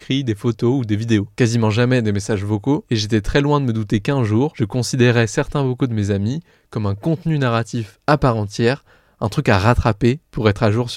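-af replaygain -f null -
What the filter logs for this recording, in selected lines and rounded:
track_gain = -1.0 dB
track_peak = 0.607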